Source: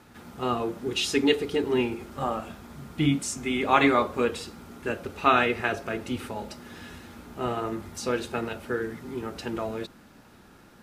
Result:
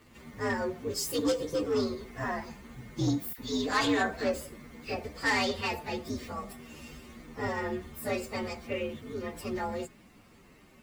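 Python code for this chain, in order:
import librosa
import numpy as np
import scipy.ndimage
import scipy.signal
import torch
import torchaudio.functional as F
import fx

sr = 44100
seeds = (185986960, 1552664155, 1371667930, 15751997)

y = fx.partial_stretch(x, sr, pct=125)
y = 10.0 ** (-21.5 / 20.0) * np.tanh(y / 10.0 ** (-21.5 / 20.0))
y = fx.dispersion(y, sr, late='lows', ms=49.0, hz=1700.0, at=(3.33, 5.04))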